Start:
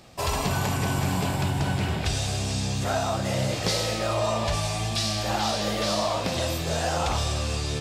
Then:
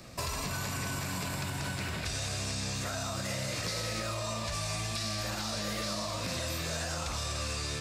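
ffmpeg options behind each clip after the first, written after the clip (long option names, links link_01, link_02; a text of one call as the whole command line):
ffmpeg -i in.wav -filter_complex "[0:a]alimiter=limit=-21dB:level=0:latency=1:release=59,acrossover=split=330|780|2700|6600[link_01][link_02][link_03][link_04][link_05];[link_01]acompressor=threshold=-41dB:ratio=4[link_06];[link_02]acompressor=threshold=-48dB:ratio=4[link_07];[link_03]acompressor=threshold=-41dB:ratio=4[link_08];[link_04]acompressor=threshold=-42dB:ratio=4[link_09];[link_05]acompressor=threshold=-47dB:ratio=4[link_10];[link_06][link_07][link_08][link_09][link_10]amix=inputs=5:normalize=0,equalizer=frequency=400:width_type=o:width=0.33:gain=-4,equalizer=frequency=800:width_type=o:width=0.33:gain=-10,equalizer=frequency=3150:width_type=o:width=0.33:gain=-7,volume=3dB" out.wav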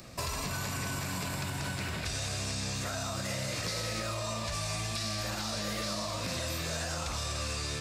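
ffmpeg -i in.wav -af "acompressor=mode=upward:threshold=-53dB:ratio=2.5" out.wav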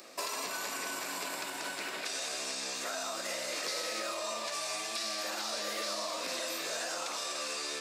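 ffmpeg -i in.wav -af "highpass=frequency=310:width=0.5412,highpass=frequency=310:width=1.3066" out.wav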